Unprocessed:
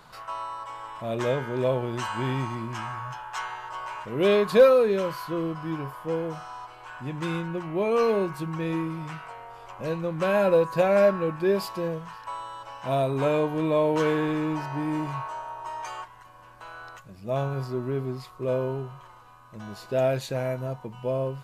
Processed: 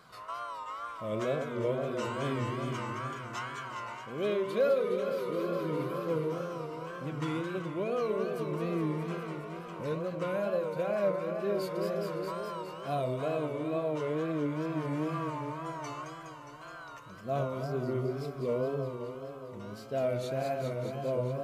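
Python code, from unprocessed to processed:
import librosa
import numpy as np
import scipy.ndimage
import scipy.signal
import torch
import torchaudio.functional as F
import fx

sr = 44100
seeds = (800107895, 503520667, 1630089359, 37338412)

p1 = x + fx.echo_alternate(x, sr, ms=104, hz=860.0, feedback_pct=85, wet_db=-5.0, dry=0)
p2 = fx.rider(p1, sr, range_db=4, speed_s=0.5)
p3 = fx.notch_comb(p2, sr, f0_hz=860.0)
p4 = fx.wow_flutter(p3, sr, seeds[0], rate_hz=2.1, depth_cents=110.0)
y = p4 * librosa.db_to_amplitude(-8.0)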